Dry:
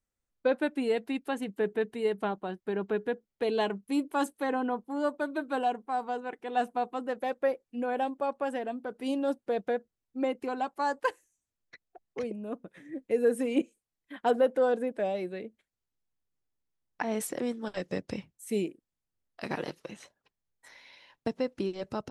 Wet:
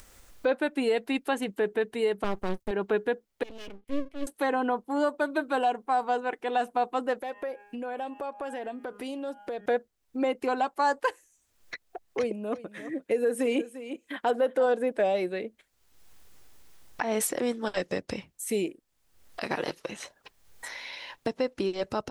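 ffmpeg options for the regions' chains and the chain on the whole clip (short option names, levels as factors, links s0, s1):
-filter_complex "[0:a]asettb=1/sr,asplit=3[s0][s1][s2];[s0]atrim=end=2.244[s3];[s1]atrim=start=2.24:end=2.71,asetpts=PTS-STARTPTS,afade=t=in:d=0.004:c=qsin,afade=t=out:st=0.466:d=0.004:c=qsin,agate=range=0.0224:threshold=0.00141:ratio=3:release=100:detection=peak,bass=f=250:g=14,treble=f=4000:g=10,aeval=exprs='max(val(0),0)':c=same[s4];[s2]atrim=start=2.706[s5];[s3][s4]acrossfade=d=0.004:c1=hsin:c2=qsin[s6];[s6][s5]acrossfade=d=0.004:c1=qsin:c2=hsin,asettb=1/sr,asplit=3[s7][s8][s9];[s7]atrim=end=3.434[s10];[s8]atrim=start=3.43:end=4.27,asetpts=PTS-STARTPTS,afade=t=in:d=0.004:c=qsin,afade=t=out:st=0.836:d=0.004:c=qsin,acompressor=mode=upward:threshold=0.0126:ratio=2.5:attack=3.2:release=140:knee=2.83:detection=peak,asplit=3[s11][s12][s13];[s11]bandpass=f=270:t=q:w=8,volume=1[s14];[s12]bandpass=f=2290:t=q:w=8,volume=0.501[s15];[s13]bandpass=f=3010:t=q:w=8,volume=0.355[s16];[s14][s15][s16]amix=inputs=3:normalize=0,aeval=exprs='max(val(0),0)':c=same[s17];[s9]atrim=start=4.266[s18];[s10][s17]acrossfade=d=0.004:c1=hsin:c2=qsin[s19];[s19][s18]acrossfade=d=0.004:c1=qsin:c2=hsin,asettb=1/sr,asplit=3[s20][s21][s22];[s20]atrim=end=7.214[s23];[s21]atrim=start=7.21:end=9.66,asetpts=PTS-STARTPTS,afade=t=in:d=0.004:c=qsin,afade=t=out:st=2.446:d=0.004:c=qsin,bandreject=f=204.9:t=h:w=4,bandreject=f=409.8:t=h:w=4,bandreject=f=614.7:t=h:w=4,bandreject=f=819.6:t=h:w=4,bandreject=f=1024.5:t=h:w=4,bandreject=f=1229.4:t=h:w=4,bandreject=f=1434.3:t=h:w=4,bandreject=f=1639.2:t=h:w=4,bandreject=f=1844.1:t=h:w=4,bandreject=f=2049:t=h:w=4,bandreject=f=2253.9:t=h:w=4,bandreject=f=2458.8:t=h:w=4,bandreject=f=2663.7:t=h:w=4,bandreject=f=2868.6:t=h:w=4,bandreject=f=3073.5:t=h:w=4,bandreject=f=3278.4:t=h:w=4,acompressor=threshold=0.00794:ratio=3:attack=3.2:release=140:knee=1:detection=peak[s24];[s22]atrim=start=9.656[s25];[s23][s24]acrossfade=d=0.004:c1=hsin:c2=qsin[s26];[s26][s25]acrossfade=d=0.004:c1=qsin:c2=hsin,asettb=1/sr,asplit=3[s27][s28][s29];[s27]atrim=end=12.184[s30];[s28]atrim=start=12.18:end=14.66,asetpts=PTS-STARTPTS,afade=t=in:d=0.004:c=qsin,afade=t=out:st=2.476:d=0.004:c=qsin,highpass=57,aecho=1:1:347:0.15,atrim=end_sample=109368[s31];[s29]atrim=start=14.656[s32];[s30][s31]acrossfade=d=0.004:c1=hsin:c2=qsin[s33];[s33][s32]acrossfade=d=0.004:c1=qsin:c2=hsin,alimiter=limit=0.0668:level=0:latency=1:release=193,equalizer=f=160:w=0.69:g=-7,acompressor=mode=upward:threshold=0.01:ratio=2.5,volume=2.51"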